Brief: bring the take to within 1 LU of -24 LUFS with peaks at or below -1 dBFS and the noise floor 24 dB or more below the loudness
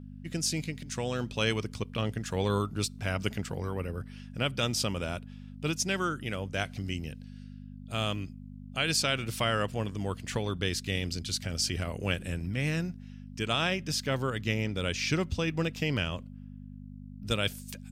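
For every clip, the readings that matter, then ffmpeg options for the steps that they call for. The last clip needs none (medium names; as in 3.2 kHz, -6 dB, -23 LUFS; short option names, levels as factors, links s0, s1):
hum 50 Hz; highest harmonic 250 Hz; hum level -43 dBFS; loudness -31.5 LUFS; peak level -14.0 dBFS; loudness target -24.0 LUFS
-> -af "bandreject=f=50:t=h:w=4,bandreject=f=100:t=h:w=4,bandreject=f=150:t=h:w=4,bandreject=f=200:t=h:w=4,bandreject=f=250:t=h:w=4"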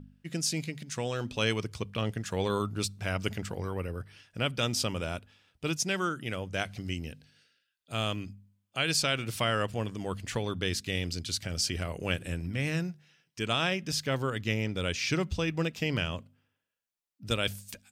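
hum not found; loudness -32.0 LUFS; peak level -14.5 dBFS; loudness target -24.0 LUFS
-> -af "volume=2.51"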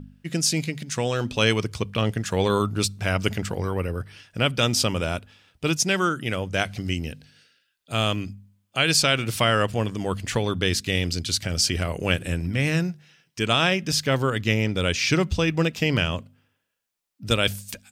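loudness -24.0 LUFS; peak level -6.5 dBFS; noise floor -73 dBFS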